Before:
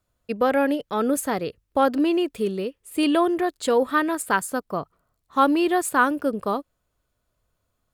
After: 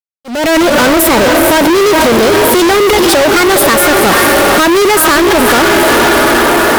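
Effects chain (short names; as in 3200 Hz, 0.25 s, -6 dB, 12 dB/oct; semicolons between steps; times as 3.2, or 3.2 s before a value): on a send: diffused feedback echo 0.541 s, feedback 57%, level -11 dB; on the sum: compressor, threshold -26 dBFS, peak gain reduction 12.5 dB; in parallel at -6 dB: bit-crush 5-bit; on the sum: varispeed +17%; fuzz box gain 53 dB, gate -51 dBFS; auto swell 0.302 s; gain +6.5 dB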